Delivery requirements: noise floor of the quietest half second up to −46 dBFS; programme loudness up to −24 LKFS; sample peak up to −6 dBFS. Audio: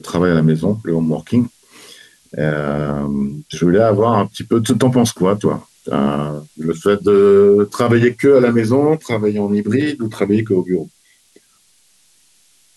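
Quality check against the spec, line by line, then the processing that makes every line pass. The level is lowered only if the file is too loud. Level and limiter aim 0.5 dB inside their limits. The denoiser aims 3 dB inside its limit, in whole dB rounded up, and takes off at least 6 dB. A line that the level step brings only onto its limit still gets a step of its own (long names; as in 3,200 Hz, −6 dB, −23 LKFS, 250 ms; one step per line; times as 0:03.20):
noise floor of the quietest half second −55 dBFS: in spec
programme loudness −15.5 LKFS: out of spec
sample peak −3.0 dBFS: out of spec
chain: level −9 dB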